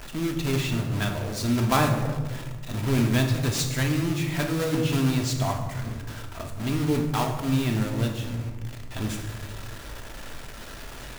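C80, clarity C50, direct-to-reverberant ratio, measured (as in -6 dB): 8.0 dB, 6.0 dB, 2.5 dB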